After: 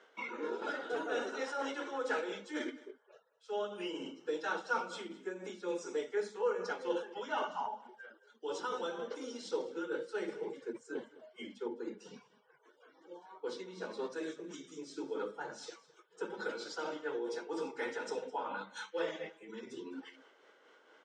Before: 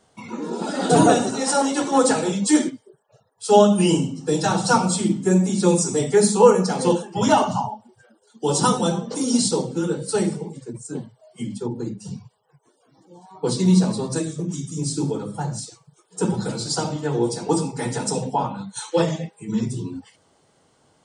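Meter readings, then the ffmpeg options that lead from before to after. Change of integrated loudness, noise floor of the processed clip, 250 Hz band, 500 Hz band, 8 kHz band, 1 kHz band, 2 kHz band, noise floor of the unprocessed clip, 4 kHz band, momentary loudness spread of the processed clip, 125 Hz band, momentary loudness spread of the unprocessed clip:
-19.0 dB, -67 dBFS, -23.5 dB, -16.0 dB, -28.5 dB, -17.5 dB, -8.5 dB, -62 dBFS, -18.0 dB, 13 LU, -37.5 dB, 16 LU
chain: -af "areverse,acompressor=threshold=-31dB:ratio=8,areverse,tremolo=f=4.2:d=0.41,highpass=f=330:w=0.5412,highpass=f=330:w=1.3066,equalizer=f=480:t=q:w=4:g=4,equalizer=f=730:t=q:w=4:g=-6,equalizer=f=1.5k:t=q:w=4:g=10,equalizer=f=2.1k:t=q:w=4:g=5,equalizer=f=3.1k:t=q:w=4:g=3,equalizer=f=4.5k:t=q:w=4:g=-9,lowpass=f=5.1k:w=0.5412,lowpass=f=5.1k:w=1.3066,aecho=1:1:210:0.106,volume=-1dB"

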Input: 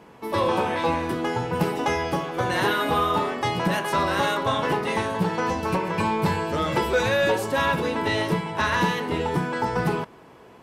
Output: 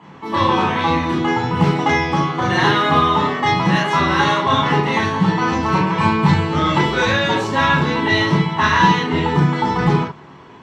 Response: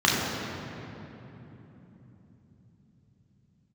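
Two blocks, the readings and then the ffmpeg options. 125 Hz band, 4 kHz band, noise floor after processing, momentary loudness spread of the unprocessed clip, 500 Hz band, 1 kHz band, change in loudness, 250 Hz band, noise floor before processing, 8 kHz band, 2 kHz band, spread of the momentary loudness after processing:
+11.0 dB, +8.5 dB, -41 dBFS, 4 LU, +2.5 dB, +8.0 dB, +7.5 dB, +9.0 dB, -49 dBFS, +3.0 dB, +7.5 dB, 4 LU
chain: -filter_complex "[0:a]lowpass=8.1k[a];[1:a]atrim=start_sample=2205,atrim=end_sample=3528[b];[a][b]afir=irnorm=-1:irlink=0,volume=-8dB"

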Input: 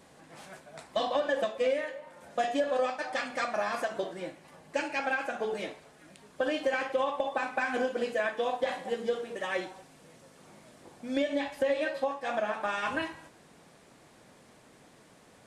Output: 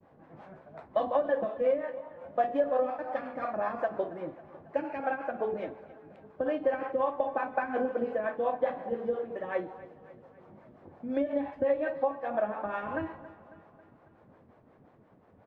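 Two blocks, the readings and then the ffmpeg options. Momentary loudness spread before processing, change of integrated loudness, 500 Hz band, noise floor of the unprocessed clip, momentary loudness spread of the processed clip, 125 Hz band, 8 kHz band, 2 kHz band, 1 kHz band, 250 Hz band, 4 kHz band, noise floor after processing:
12 LU, 0.0 dB, +1.0 dB, -58 dBFS, 15 LU, +2.5 dB, under -30 dB, -7.0 dB, 0.0 dB, +0.5 dB, under -15 dB, -60 dBFS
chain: -filter_complex "[0:a]lowpass=1.1k,equalizer=f=92:w=3.9:g=8,agate=range=-33dB:threshold=-55dB:ratio=3:detection=peak,acrossover=split=400[a][b];[a]aeval=exprs='val(0)*(1-0.7/2+0.7/2*cos(2*PI*5.6*n/s))':c=same[c];[b]aeval=exprs='val(0)*(1-0.7/2-0.7/2*cos(2*PI*5.6*n/s))':c=same[d];[c][d]amix=inputs=2:normalize=0,asplit=2[e][f];[f]aecho=0:1:274|548|822|1096|1370:0.126|0.0718|0.0409|0.0233|0.0133[g];[e][g]amix=inputs=2:normalize=0,volume=4.5dB"

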